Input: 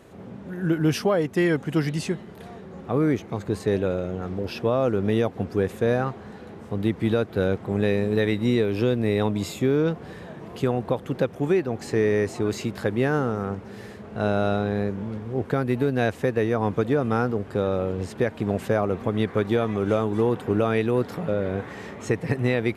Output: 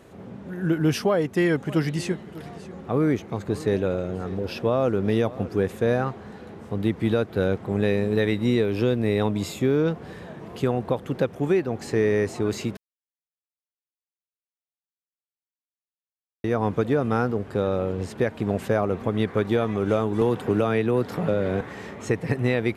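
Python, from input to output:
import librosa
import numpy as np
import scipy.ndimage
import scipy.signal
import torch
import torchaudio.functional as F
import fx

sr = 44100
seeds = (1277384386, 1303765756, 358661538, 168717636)

y = fx.echo_single(x, sr, ms=596, db=-17.5, at=(1.66, 5.65), fade=0.02)
y = fx.band_squash(y, sr, depth_pct=70, at=(20.21, 21.61))
y = fx.edit(y, sr, fx.silence(start_s=12.77, length_s=3.67), tone=tone)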